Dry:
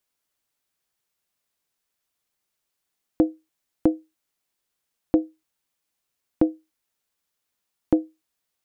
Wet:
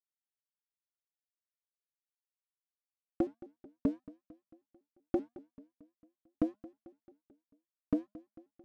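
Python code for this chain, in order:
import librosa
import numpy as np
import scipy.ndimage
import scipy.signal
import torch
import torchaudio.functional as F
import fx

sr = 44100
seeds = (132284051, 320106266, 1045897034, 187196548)

y = scipy.signal.sosfilt(scipy.signal.ellip(4, 1.0, 40, 820.0, 'lowpass', fs=sr, output='sos'), x)
y = fx.peak_eq(y, sr, hz=410.0, db=-9.5, octaves=0.53)
y = np.sign(y) * np.maximum(np.abs(y) - 10.0 ** (-50.0 / 20.0), 0.0)
y = fx.comb_fb(y, sr, f0_hz=230.0, decay_s=0.21, harmonics='odd', damping=0.0, mix_pct=60)
y = np.clip(10.0 ** (20.5 / 20.0) * y, -1.0, 1.0) / 10.0 ** (20.5 / 20.0)
y = fx.echo_feedback(y, sr, ms=222, feedback_pct=55, wet_db=-19)
y = fx.vibrato_shape(y, sr, shape='saw_up', rate_hz=5.2, depth_cents=250.0)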